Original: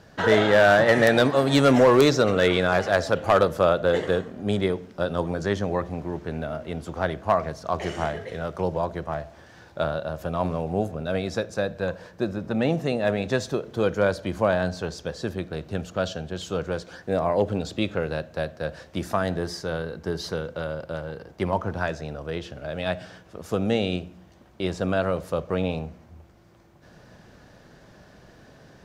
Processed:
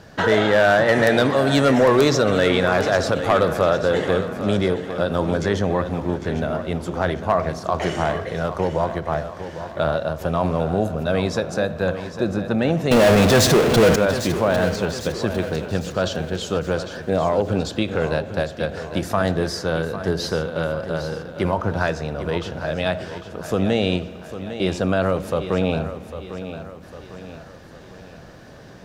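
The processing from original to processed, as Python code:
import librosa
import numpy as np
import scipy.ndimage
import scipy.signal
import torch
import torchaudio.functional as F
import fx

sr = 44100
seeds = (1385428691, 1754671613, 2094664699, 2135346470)

p1 = fx.over_compress(x, sr, threshold_db=-26.0, ratio=-1.0)
p2 = x + F.gain(torch.from_numpy(p1), -2.5).numpy()
p3 = fx.rev_spring(p2, sr, rt60_s=3.1, pass_ms=(42,), chirp_ms=50, drr_db=17.5)
p4 = fx.power_curve(p3, sr, exponent=0.35, at=(12.91, 13.96))
p5 = fx.echo_feedback(p4, sr, ms=802, feedback_pct=48, wet_db=-11.5)
y = fx.end_taper(p5, sr, db_per_s=180.0)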